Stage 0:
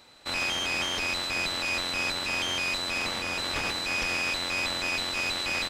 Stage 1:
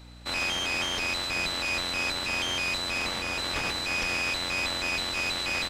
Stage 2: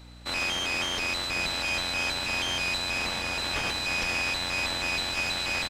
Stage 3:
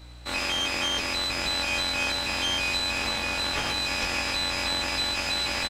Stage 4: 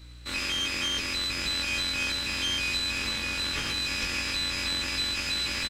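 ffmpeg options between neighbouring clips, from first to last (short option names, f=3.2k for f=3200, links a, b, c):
-af "aeval=exprs='val(0)+0.00447*(sin(2*PI*60*n/s)+sin(2*PI*2*60*n/s)/2+sin(2*PI*3*60*n/s)/3+sin(2*PI*4*60*n/s)/4+sin(2*PI*5*60*n/s)/5)':c=same"
-af "aecho=1:1:1149:0.299"
-filter_complex "[0:a]asplit=2[a][b];[b]adelay=19,volume=-3dB[c];[a][c]amix=inputs=2:normalize=0"
-af "equalizer=f=740:t=o:w=0.91:g=-14,volume=-1dB"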